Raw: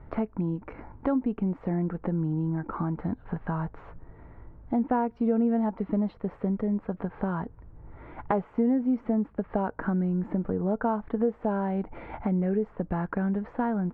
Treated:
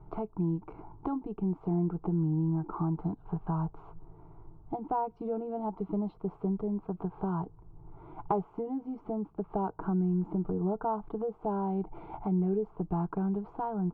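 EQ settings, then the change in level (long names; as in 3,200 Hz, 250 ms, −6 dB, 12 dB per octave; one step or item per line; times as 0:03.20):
high-shelf EQ 2,200 Hz −9 dB
phaser with its sweep stopped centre 360 Hz, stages 8
0.0 dB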